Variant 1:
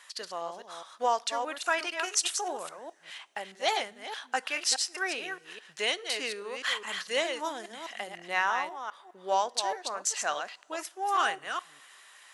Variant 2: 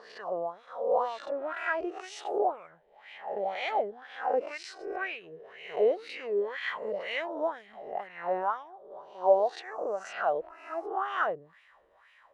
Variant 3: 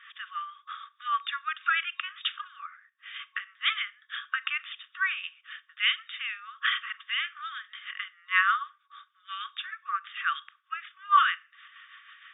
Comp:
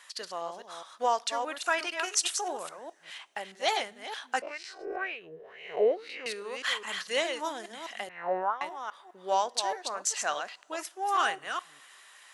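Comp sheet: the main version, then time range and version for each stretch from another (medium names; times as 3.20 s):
1
4.42–6.26 s: from 2
8.09–8.61 s: from 2
not used: 3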